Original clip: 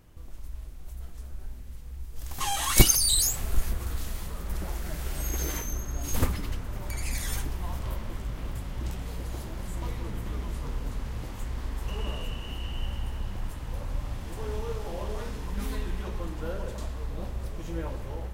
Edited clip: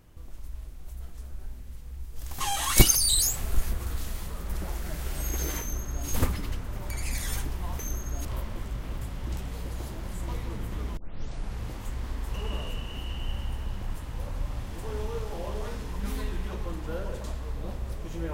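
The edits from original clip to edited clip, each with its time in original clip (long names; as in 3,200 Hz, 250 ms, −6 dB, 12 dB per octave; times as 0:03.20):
0:05.61–0:06.07: duplicate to 0:07.79
0:10.51: tape start 0.62 s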